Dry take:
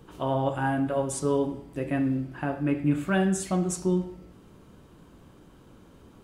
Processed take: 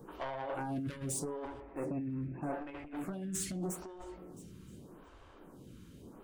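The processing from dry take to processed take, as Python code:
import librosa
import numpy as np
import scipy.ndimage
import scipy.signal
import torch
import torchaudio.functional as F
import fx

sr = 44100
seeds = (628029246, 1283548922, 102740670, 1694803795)

y = fx.over_compress(x, sr, threshold_db=-28.0, ratio=-0.5)
y = 10.0 ** (-30.0 / 20.0) * np.tanh(y / 10.0 ** (-30.0 / 20.0))
y = fx.brickwall_lowpass(y, sr, high_hz=2700.0, at=(1.6, 2.53))
y = fx.echo_feedback(y, sr, ms=664, feedback_pct=29, wet_db=-21.0)
y = fx.stagger_phaser(y, sr, hz=0.82)
y = F.gain(torch.from_numpy(y), -1.5).numpy()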